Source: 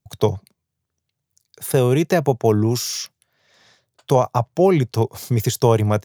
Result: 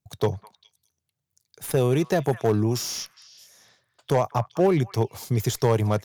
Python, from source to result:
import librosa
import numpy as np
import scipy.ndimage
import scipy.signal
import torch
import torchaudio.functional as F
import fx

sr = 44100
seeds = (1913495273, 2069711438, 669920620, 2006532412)

y = fx.tracing_dist(x, sr, depth_ms=0.021)
y = fx.echo_stepped(y, sr, ms=207, hz=1400.0, octaves=1.4, feedback_pct=70, wet_db=-12.0)
y = fx.clip_asym(y, sr, top_db=-10.5, bottom_db=-8.0)
y = y * librosa.db_to_amplitude(-4.5)